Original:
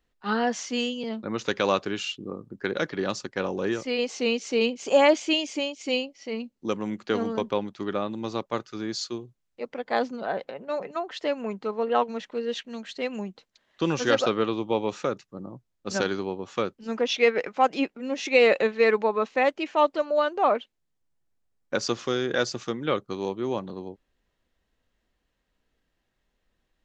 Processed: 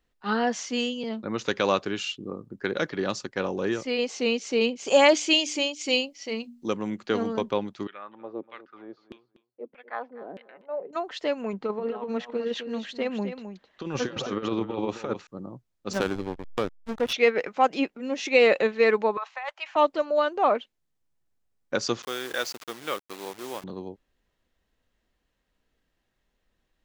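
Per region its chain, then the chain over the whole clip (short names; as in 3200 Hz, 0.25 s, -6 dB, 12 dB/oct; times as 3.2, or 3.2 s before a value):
4.87–6.68 high shelf 2900 Hz +9 dB + notches 60/120/180/240/300 Hz
7.87–10.93 air absorption 230 m + LFO band-pass saw down 1.6 Hz 230–3000 Hz + feedback echo 0.243 s, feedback 16%, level -17 dB
11.53–15.27 high shelf 4900 Hz -11.5 dB + negative-ratio compressor -28 dBFS, ratio -0.5 + echo 0.262 s -9.5 dB
15.93–17.13 backlash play -25 dBFS + mismatched tape noise reduction encoder only
19.17–19.76 steep high-pass 790 Hz + negative-ratio compressor -31 dBFS + tilt -3 dB/oct
22.02–23.64 level-crossing sampler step -34 dBFS + HPF 1000 Hz 6 dB/oct
whole clip: dry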